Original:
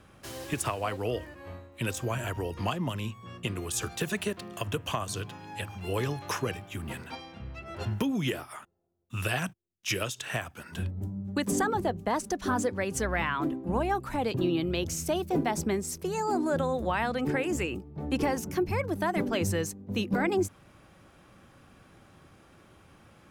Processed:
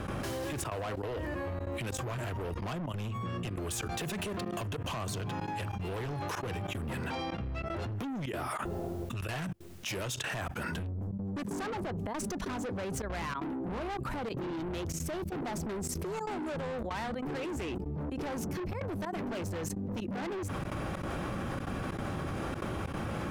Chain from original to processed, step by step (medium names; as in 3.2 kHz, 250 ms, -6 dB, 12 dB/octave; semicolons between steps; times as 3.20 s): treble shelf 2 kHz -8.5 dB; in parallel at +2 dB: peak limiter -26.5 dBFS, peak gain reduction 8 dB; on the sum: trance gate ".xxxxxxx.xxx" 189 bpm -24 dB; saturation -31 dBFS, distortion -6 dB; level flattener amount 100%; trim -4 dB